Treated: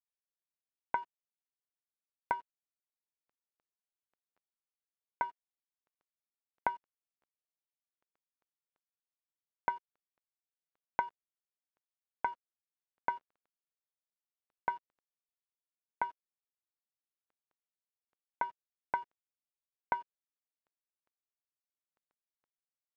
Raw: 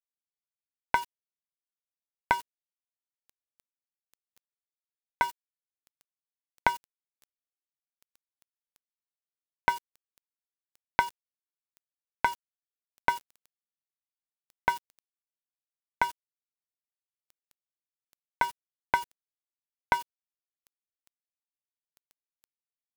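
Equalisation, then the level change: low-pass 1.3 kHz 12 dB/octave; bass shelf 190 Hz -12 dB; -5.5 dB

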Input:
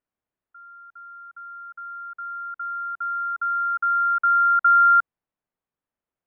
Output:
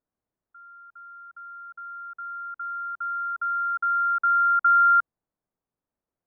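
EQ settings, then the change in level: low-pass 1.2 kHz 6 dB/octave; distance through air 420 m; +4.0 dB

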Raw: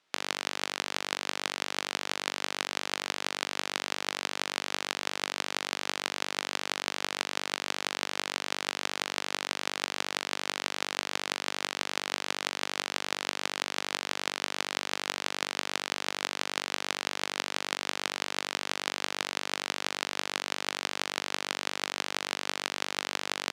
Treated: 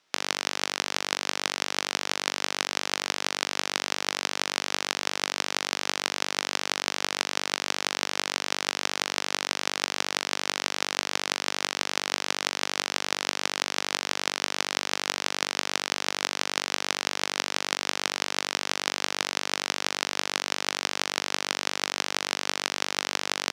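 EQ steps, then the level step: peaking EQ 5.6 kHz +5 dB 0.4 oct; +3.5 dB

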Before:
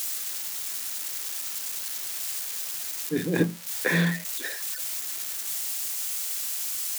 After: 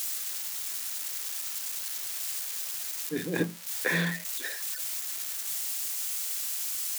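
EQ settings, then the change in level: bass shelf 360 Hz -6 dB; -2.0 dB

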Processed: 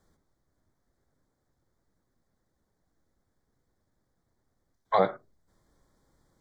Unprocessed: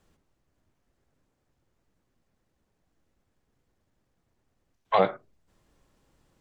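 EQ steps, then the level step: Butterworth band-stop 2.7 kHz, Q 2; -1.5 dB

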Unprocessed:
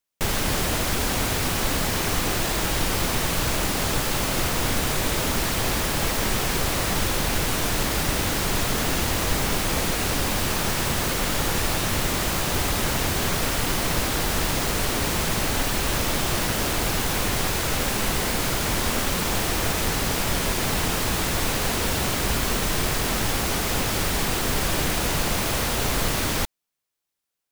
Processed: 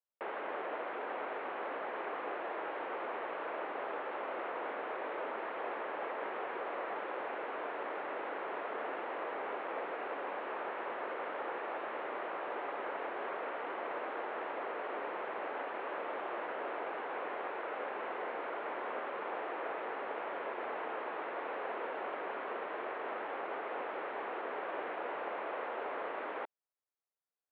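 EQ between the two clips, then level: Gaussian low-pass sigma 4.6 samples; high-pass 420 Hz 24 dB/octave; distance through air 72 m; -7.0 dB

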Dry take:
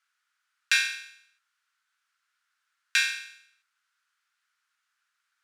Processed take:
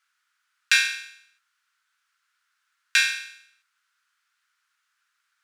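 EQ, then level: steep high-pass 820 Hz; +4.0 dB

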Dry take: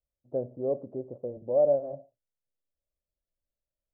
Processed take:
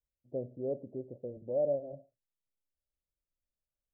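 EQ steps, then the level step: Gaussian low-pass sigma 13 samples; -2.5 dB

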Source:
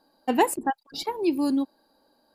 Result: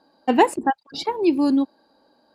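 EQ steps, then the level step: high-pass 56 Hz; distance through air 73 m; +5.5 dB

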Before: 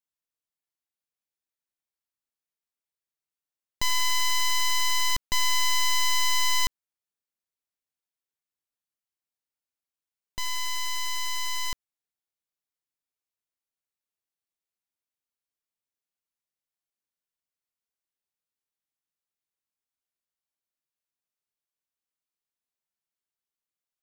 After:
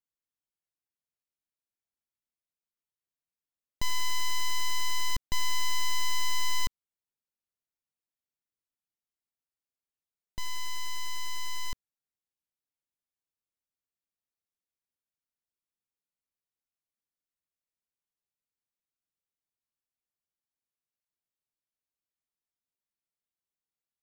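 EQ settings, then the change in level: bass shelf 420 Hz +8 dB; -7.5 dB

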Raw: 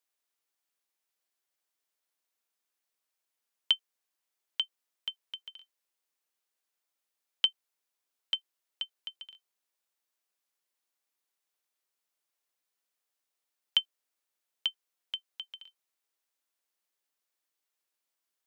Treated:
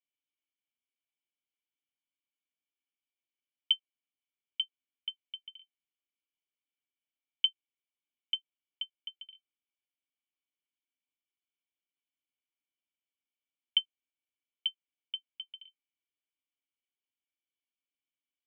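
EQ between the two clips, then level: cascade formant filter i; tilt EQ +1.5 dB/octave; bass shelf 380 Hz -9.5 dB; +8.5 dB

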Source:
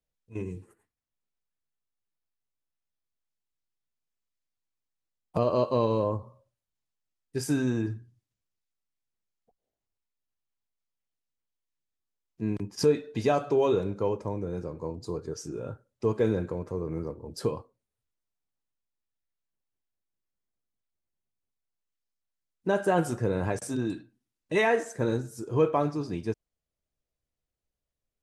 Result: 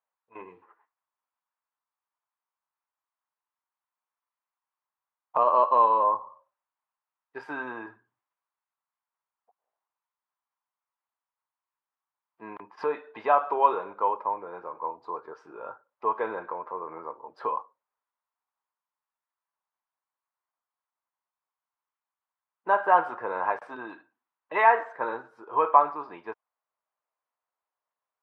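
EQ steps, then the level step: resonant high-pass 990 Hz, resonance Q 3.4; low-pass 1.7 kHz 6 dB/octave; distance through air 430 m; +7.5 dB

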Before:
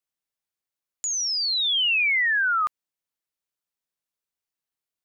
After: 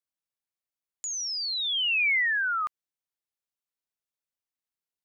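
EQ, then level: dynamic bell 2.2 kHz, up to +4 dB, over -32 dBFS, Q 2.1; -6.0 dB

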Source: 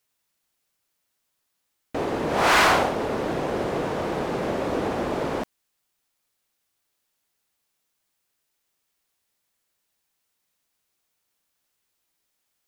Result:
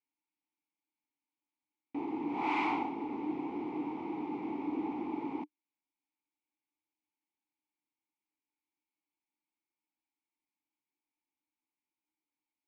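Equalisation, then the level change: vowel filter u; distance through air 53 m; 0.0 dB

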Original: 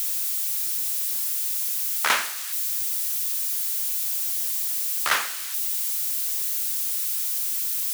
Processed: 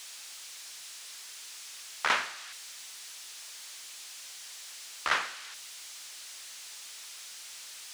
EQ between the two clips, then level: distance through air 95 m; -4.0 dB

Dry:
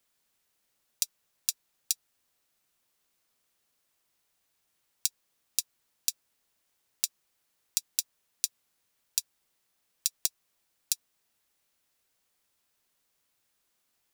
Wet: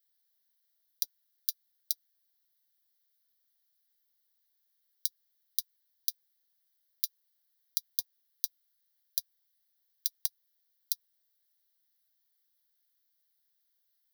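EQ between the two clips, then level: tilt EQ +4 dB/octave; static phaser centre 1.7 kHz, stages 8; -12.5 dB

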